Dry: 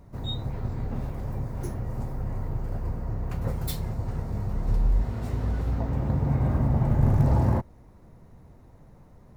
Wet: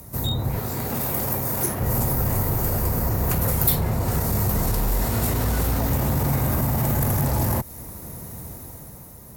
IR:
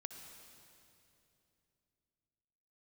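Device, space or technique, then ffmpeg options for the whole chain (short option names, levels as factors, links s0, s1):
FM broadcast chain: -filter_complex "[0:a]highpass=49,dynaudnorm=f=140:g=11:m=2.11,acrossover=split=230|650|1600|3500[s0][s1][s2][s3][s4];[s0]acompressor=threshold=0.0398:ratio=4[s5];[s1]acompressor=threshold=0.0141:ratio=4[s6];[s2]acompressor=threshold=0.01:ratio=4[s7];[s3]acompressor=threshold=0.00316:ratio=4[s8];[s4]acompressor=threshold=0.00141:ratio=4[s9];[s5][s6][s7][s8][s9]amix=inputs=5:normalize=0,aemphasis=mode=production:type=50fm,alimiter=limit=0.075:level=0:latency=1:release=16,asoftclip=type=hard:threshold=0.0562,lowpass=f=15000:w=0.5412,lowpass=f=15000:w=1.3066,aemphasis=mode=production:type=50fm,asettb=1/sr,asplit=3[s10][s11][s12];[s10]atrim=end=0.594[s13];[s11]atrim=start=0.59:end=1.81,asetpts=PTS-STARTPTS,afade=t=in:d=0.004:c=qsin,afade=t=out:st=1.216:d=0.004:c=qsin,highpass=f=220:p=1[s14];[s12]atrim=start=1.806[s15];[s13][s14]acrossfade=d=0.004:c1=hsin:c2=qsin[s16];[s16][s15]acrossfade=d=0.004:c1=qsin:c2=hsin,volume=2.66"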